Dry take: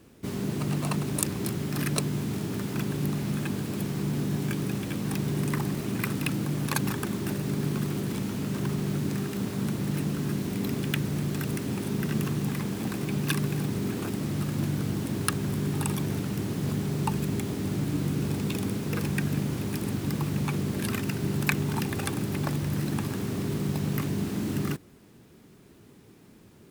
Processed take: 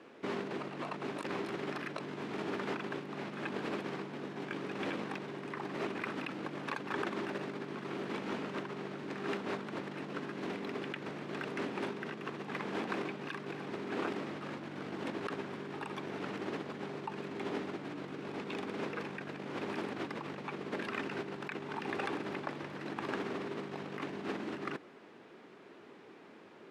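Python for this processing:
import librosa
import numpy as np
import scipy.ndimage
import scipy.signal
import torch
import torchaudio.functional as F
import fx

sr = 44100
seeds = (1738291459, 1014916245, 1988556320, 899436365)

y = fx.over_compress(x, sr, threshold_db=-33.0, ratio=-1.0)
y = fx.bandpass_edges(y, sr, low_hz=450.0, high_hz=2500.0)
y = F.gain(torch.from_numpy(y), 3.0).numpy()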